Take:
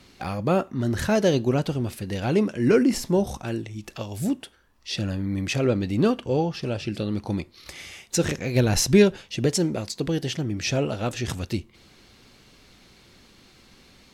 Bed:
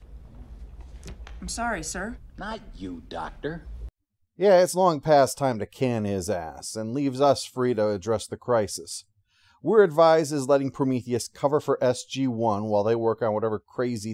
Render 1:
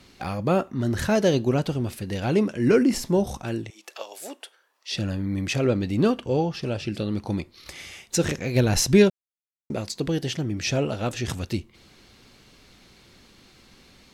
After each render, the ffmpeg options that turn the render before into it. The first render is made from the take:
ffmpeg -i in.wav -filter_complex "[0:a]asettb=1/sr,asplit=3[link_01][link_02][link_03];[link_01]atrim=end=3.704[link_04];[link_02]atrim=start=3.7:end=4.92,asetpts=PTS-STARTPTS,afade=type=in:duration=0.004:curve=qsin,afade=type=out:start_time=1.216:duration=0.004:curve=qsin,highpass=frequency=460:width=0.5412,highpass=frequency=460:width=1.3066[link_05];[link_03]atrim=start=4.916[link_06];[link_04][link_05]acrossfade=duration=0.004:curve1=hsin:curve2=qsin[link_07];[link_07][link_06]acrossfade=duration=0.004:curve1=qsin:curve2=hsin,asplit=3[link_08][link_09][link_10];[link_08]atrim=end=9.1,asetpts=PTS-STARTPTS,afade=type=out:start_time=9.096:duration=0.004:curve=hsin[link_11];[link_09]atrim=start=9.1:end=9.7,asetpts=PTS-STARTPTS,volume=0[link_12];[link_10]atrim=start=9.7,asetpts=PTS-STARTPTS,afade=type=in:duration=0.004:curve=hsin[link_13];[link_11][link_12][link_13]concat=n=3:v=0:a=1" out.wav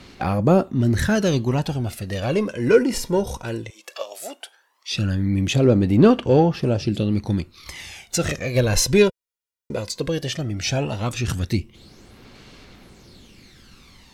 ffmpeg -i in.wav -filter_complex "[0:a]asplit=2[link_01][link_02];[link_02]asoftclip=type=tanh:threshold=-22.5dB,volume=-10dB[link_03];[link_01][link_03]amix=inputs=2:normalize=0,aphaser=in_gain=1:out_gain=1:delay=2.1:decay=0.52:speed=0.16:type=sinusoidal" out.wav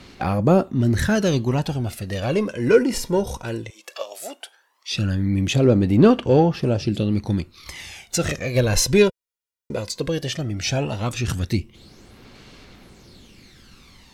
ffmpeg -i in.wav -af anull out.wav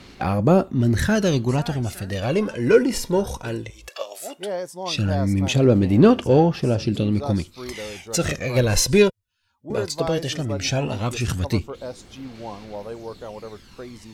ffmpeg -i in.wav -i bed.wav -filter_complex "[1:a]volume=-11dB[link_01];[0:a][link_01]amix=inputs=2:normalize=0" out.wav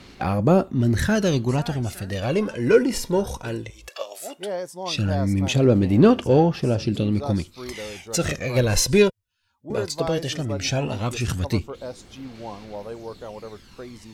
ffmpeg -i in.wav -af "volume=-1dB" out.wav

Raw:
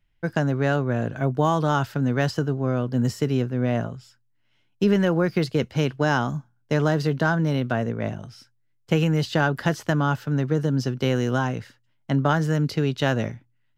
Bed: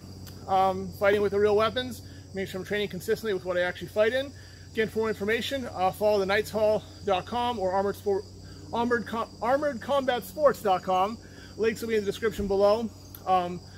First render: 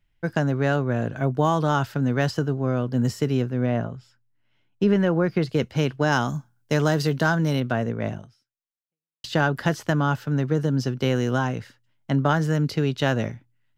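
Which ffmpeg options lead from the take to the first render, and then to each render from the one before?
ffmpeg -i in.wav -filter_complex "[0:a]asettb=1/sr,asplit=3[link_01][link_02][link_03];[link_01]atrim=end=3.664[link_04];[link_02]atrim=start=3.66:end=5.49,asetpts=PTS-STARTPTS,afade=type=in:duration=0.004:curve=qsin,afade=type=out:start_time=1.826:duration=0.004:curve=qsin,highshelf=frequency=4200:gain=-10.5[link_05];[link_03]atrim=start=5.486[link_06];[link_04][link_05]acrossfade=duration=0.004:curve1=hsin:curve2=qsin[link_07];[link_07][link_06]acrossfade=duration=0.004:curve1=qsin:curve2=hsin,asettb=1/sr,asplit=3[link_08][link_09][link_10];[link_08]atrim=end=6.124[link_11];[link_09]atrim=start=6.12:end=7.6,asetpts=PTS-STARTPTS,afade=type=in:duration=0.004:curve=qsin,afade=type=out:start_time=1.476:duration=0.004:curve=qsin,highshelf=frequency=4300:gain=9.5[link_12];[link_10]atrim=start=7.596[link_13];[link_11][link_12]acrossfade=duration=0.004:curve1=hsin:curve2=qsin[link_14];[link_14][link_13]acrossfade=duration=0.004:curve1=qsin:curve2=hsin,asplit=2[link_15][link_16];[link_15]atrim=end=9.24,asetpts=PTS-STARTPTS,afade=type=out:start_time=8.17:duration=1.07:curve=exp[link_17];[link_16]atrim=start=9.24,asetpts=PTS-STARTPTS,afade=type=in:duration=0.004:curve=hsin[link_18];[link_17][link_18]concat=n=2:v=0:a=1" out.wav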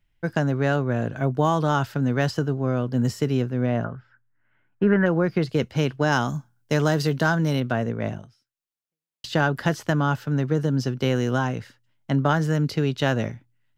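ffmpeg -i in.wav -filter_complex "[0:a]asettb=1/sr,asplit=3[link_01][link_02][link_03];[link_01]atrim=end=3.844[link_04];[link_02]atrim=start=3.84:end=5.06,asetpts=PTS-STARTPTS,afade=type=in:duration=0.004:curve=qsin,afade=type=out:start_time=1.216:duration=0.004:curve=qsin,lowpass=frequency=1600:width_type=q:width=4[link_05];[link_03]atrim=start=5.056[link_06];[link_04][link_05]acrossfade=duration=0.004:curve1=hsin:curve2=qsin[link_07];[link_07][link_06]acrossfade=duration=0.004:curve1=qsin:curve2=hsin" out.wav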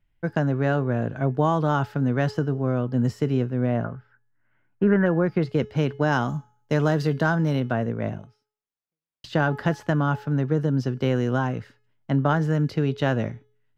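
ffmpeg -i in.wav -af "highshelf=frequency=3400:gain=-11.5,bandreject=frequency=424.6:width_type=h:width=4,bandreject=frequency=849.2:width_type=h:width=4,bandreject=frequency=1273.8:width_type=h:width=4,bandreject=frequency=1698.4:width_type=h:width=4,bandreject=frequency=2123:width_type=h:width=4,bandreject=frequency=2547.6:width_type=h:width=4,bandreject=frequency=2972.2:width_type=h:width=4,bandreject=frequency=3396.8:width_type=h:width=4,bandreject=frequency=3821.4:width_type=h:width=4,bandreject=frequency=4246:width_type=h:width=4,bandreject=frequency=4670.6:width_type=h:width=4,bandreject=frequency=5095.2:width_type=h:width=4,bandreject=frequency=5519.8:width_type=h:width=4,bandreject=frequency=5944.4:width_type=h:width=4,bandreject=frequency=6369:width_type=h:width=4,bandreject=frequency=6793.6:width_type=h:width=4,bandreject=frequency=7218.2:width_type=h:width=4,bandreject=frequency=7642.8:width_type=h:width=4,bandreject=frequency=8067.4:width_type=h:width=4,bandreject=frequency=8492:width_type=h:width=4,bandreject=frequency=8916.6:width_type=h:width=4,bandreject=frequency=9341.2:width_type=h:width=4,bandreject=frequency=9765.8:width_type=h:width=4,bandreject=frequency=10190.4:width_type=h:width=4,bandreject=frequency=10615:width_type=h:width=4,bandreject=frequency=11039.6:width_type=h:width=4,bandreject=frequency=11464.2:width_type=h:width=4,bandreject=frequency=11888.8:width_type=h:width=4,bandreject=frequency=12313.4:width_type=h:width=4" out.wav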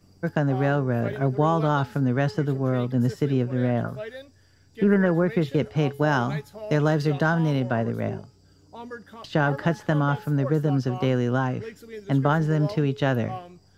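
ffmpeg -i in.wav -i bed.wav -filter_complex "[1:a]volume=-12.5dB[link_01];[0:a][link_01]amix=inputs=2:normalize=0" out.wav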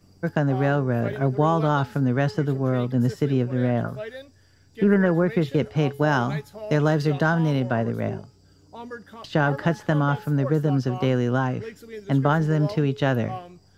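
ffmpeg -i in.wav -af "volume=1dB" out.wav

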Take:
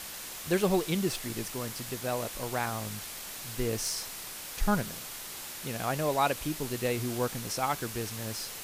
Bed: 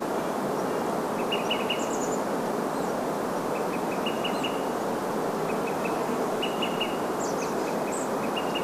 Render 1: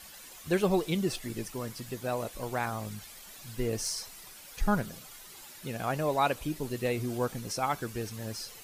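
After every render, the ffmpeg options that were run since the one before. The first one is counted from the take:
ffmpeg -i in.wav -af "afftdn=noise_reduction=11:noise_floor=-42" out.wav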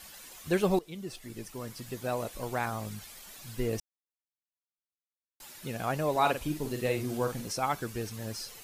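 ffmpeg -i in.wav -filter_complex "[0:a]asettb=1/sr,asplit=3[link_01][link_02][link_03];[link_01]atrim=end=6.114[link_04];[link_02]atrim=start=6.11:end=7.48,asetpts=PTS-STARTPTS,afade=type=in:duration=0.004:curve=qsin,afade=type=out:start_time=1.366:duration=0.004:curve=qsin,asplit=2[link_05][link_06];[link_06]adelay=47,volume=-7dB[link_07];[link_05][link_07]amix=inputs=2:normalize=0,atrim=end_sample=60417[link_08];[link_03]atrim=start=7.476[link_09];[link_04][link_08]acrossfade=duration=0.004:curve1=hsin:curve2=qsin[link_10];[link_10][link_09]acrossfade=duration=0.004:curve1=qsin:curve2=hsin,asplit=4[link_11][link_12][link_13][link_14];[link_11]atrim=end=0.79,asetpts=PTS-STARTPTS,afade=type=out:start_time=0.786:duration=0.004:curve=hsin:silence=0.141254[link_15];[link_12]atrim=start=0.79:end=3.8,asetpts=PTS-STARTPTS,afade=type=in:duration=1.27:silence=0.141254,afade=type=out:start_time=3.006:duration=0.004:curve=hsin[link_16];[link_13]atrim=start=3.8:end=5.4,asetpts=PTS-STARTPTS,volume=0[link_17];[link_14]atrim=start=5.4,asetpts=PTS-STARTPTS,afade=type=in:duration=0.004:curve=hsin[link_18];[link_15][link_16][link_17][link_18]concat=n=4:v=0:a=1" out.wav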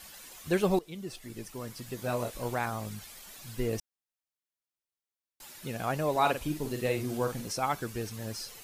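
ffmpeg -i in.wav -filter_complex "[0:a]asettb=1/sr,asplit=3[link_01][link_02][link_03];[link_01]atrim=end=1.964[link_04];[link_02]atrim=start=1.96:end=2.55,asetpts=PTS-STARTPTS,afade=type=in:duration=0.004:curve=qsin,afade=type=out:start_time=0.586:duration=0.004:curve=qsin,asplit=2[link_05][link_06];[link_06]adelay=25,volume=-5dB[link_07];[link_05][link_07]amix=inputs=2:normalize=0,atrim=end_sample=26019[link_08];[link_03]atrim=start=2.546[link_09];[link_04][link_08]acrossfade=duration=0.004:curve1=hsin:curve2=qsin[link_10];[link_10][link_09]acrossfade=duration=0.004:curve1=qsin:curve2=hsin" out.wav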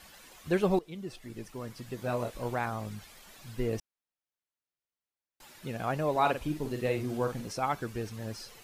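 ffmpeg -i in.wav -af "highshelf=frequency=4800:gain=-9.5" out.wav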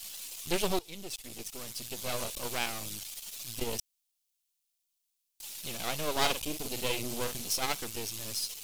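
ffmpeg -i in.wav -af "aeval=exprs='max(val(0),0)':channel_layout=same,aexciter=amount=4.5:drive=6.6:freq=2500" out.wav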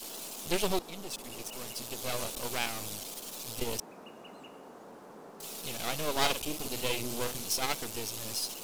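ffmpeg -i in.wav -i bed.wav -filter_complex "[1:a]volume=-21.5dB[link_01];[0:a][link_01]amix=inputs=2:normalize=0" out.wav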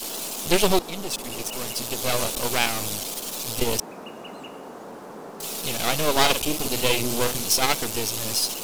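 ffmpeg -i in.wav -af "volume=10.5dB,alimiter=limit=-3dB:level=0:latency=1" out.wav

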